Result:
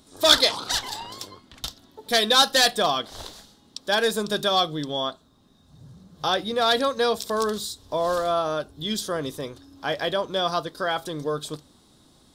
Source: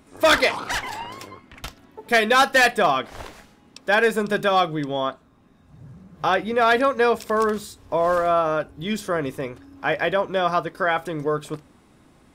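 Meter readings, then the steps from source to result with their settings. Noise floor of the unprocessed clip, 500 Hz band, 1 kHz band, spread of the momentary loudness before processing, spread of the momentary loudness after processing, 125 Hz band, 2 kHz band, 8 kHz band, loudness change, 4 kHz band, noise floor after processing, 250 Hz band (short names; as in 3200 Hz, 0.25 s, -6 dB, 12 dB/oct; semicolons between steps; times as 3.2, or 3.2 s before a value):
-55 dBFS, -4.0 dB, -4.5 dB, 17 LU, 19 LU, -3.5 dB, -6.5 dB, +5.5 dB, -2.0 dB, +7.0 dB, -58 dBFS, -3.5 dB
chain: resonant high shelf 3000 Hz +7.5 dB, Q 3; gain -3.5 dB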